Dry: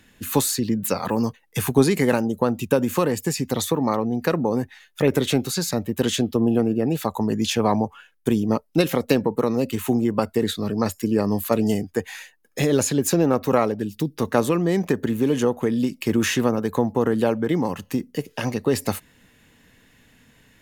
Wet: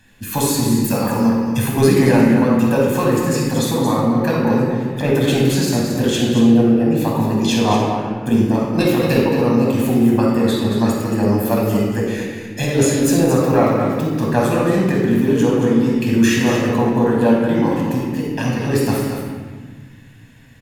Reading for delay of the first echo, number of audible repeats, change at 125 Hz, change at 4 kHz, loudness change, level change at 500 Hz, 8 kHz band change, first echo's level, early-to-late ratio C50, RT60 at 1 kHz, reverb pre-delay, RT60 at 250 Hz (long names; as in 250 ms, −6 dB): 226 ms, 1, +8.0 dB, +4.0 dB, +6.0 dB, +4.5 dB, +2.5 dB, −8.0 dB, −1.0 dB, 1.5 s, 9 ms, 2.4 s